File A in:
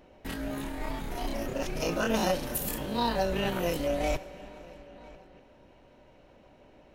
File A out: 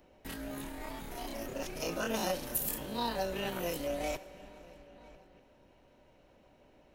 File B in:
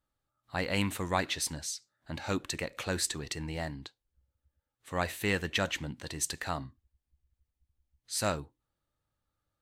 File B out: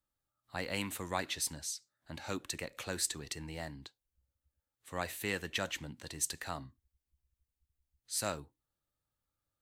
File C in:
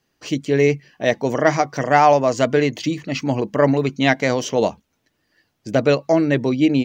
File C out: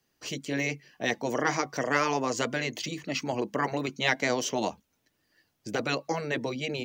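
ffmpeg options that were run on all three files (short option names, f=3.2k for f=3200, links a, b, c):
-filter_complex "[0:a]afftfilt=real='re*lt(hypot(re,im),0.891)':imag='im*lt(hypot(re,im),0.891)':win_size=1024:overlap=0.75,highshelf=f=6.7k:g=7.5,acrossover=split=210|1300[a][b][c];[a]acompressor=threshold=-38dB:ratio=6[d];[d][b][c]amix=inputs=3:normalize=0,volume=-6dB"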